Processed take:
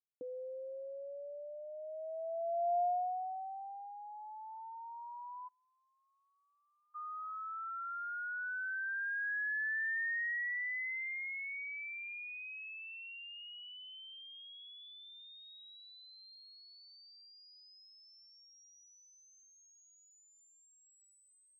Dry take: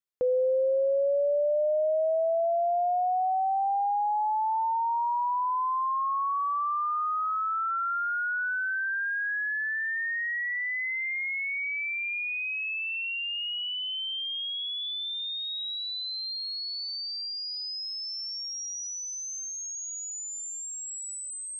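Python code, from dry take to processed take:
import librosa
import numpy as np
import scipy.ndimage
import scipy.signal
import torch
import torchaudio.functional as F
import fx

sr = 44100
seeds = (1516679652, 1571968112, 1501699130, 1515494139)

y = fx.formant_cascade(x, sr, vowel='i', at=(5.47, 6.94), fade=0.02)
y = fx.filter_sweep_bandpass(y, sr, from_hz=280.0, to_hz=1800.0, start_s=1.66, end_s=3.94, q=3.7)
y = y * librosa.db_to_amplitude(-5.5)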